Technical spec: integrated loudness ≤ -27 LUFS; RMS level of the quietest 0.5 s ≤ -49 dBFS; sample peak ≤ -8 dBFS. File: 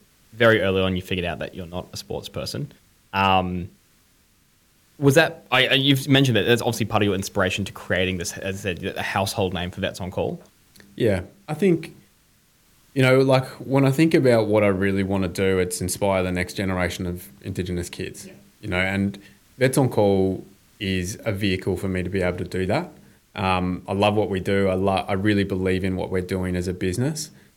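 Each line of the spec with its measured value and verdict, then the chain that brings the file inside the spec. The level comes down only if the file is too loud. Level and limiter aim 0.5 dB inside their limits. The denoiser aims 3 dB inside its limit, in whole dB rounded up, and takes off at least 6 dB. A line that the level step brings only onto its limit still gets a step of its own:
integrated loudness -22.5 LUFS: fail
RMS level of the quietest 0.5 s -60 dBFS: pass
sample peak -5.0 dBFS: fail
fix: trim -5 dB

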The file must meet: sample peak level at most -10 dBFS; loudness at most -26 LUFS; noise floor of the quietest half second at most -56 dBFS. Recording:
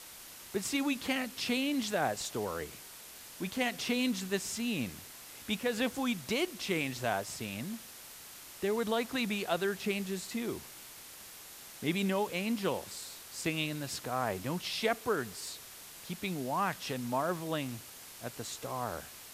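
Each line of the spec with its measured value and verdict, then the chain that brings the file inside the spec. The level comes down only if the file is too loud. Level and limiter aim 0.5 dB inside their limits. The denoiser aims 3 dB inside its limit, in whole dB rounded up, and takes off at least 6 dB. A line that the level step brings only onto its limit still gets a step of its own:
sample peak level -17.0 dBFS: pass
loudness -34.5 LUFS: pass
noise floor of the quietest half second -50 dBFS: fail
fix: noise reduction 9 dB, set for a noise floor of -50 dBFS

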